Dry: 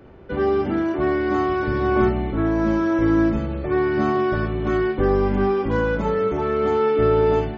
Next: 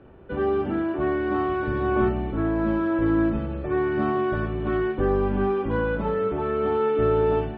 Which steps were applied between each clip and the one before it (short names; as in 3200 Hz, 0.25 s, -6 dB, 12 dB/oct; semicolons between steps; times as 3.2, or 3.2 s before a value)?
LPF 3400 Hz 24 dB/oct; notch 2100 Hz, Q 7.8; gain -3.5 dB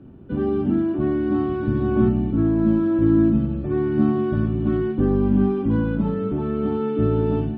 graphic EQ 125/250/500/1000/2000 Hz +7/+11/-7/-4/-8 dB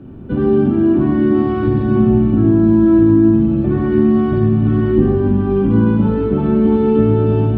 compressor, threshold -21 dBFS, peak gain reduction 8.5 dB; reverb RT60 1.4 s, pre-delay 64 ms, DRR 2 dB; gain +8 dB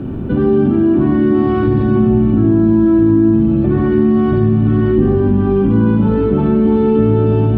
fast leveller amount 50%; gain -1 dB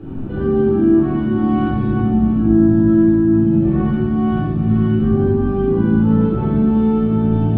shoebox room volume 660 m³, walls mixed, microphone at 4 m; gain -13.5 dB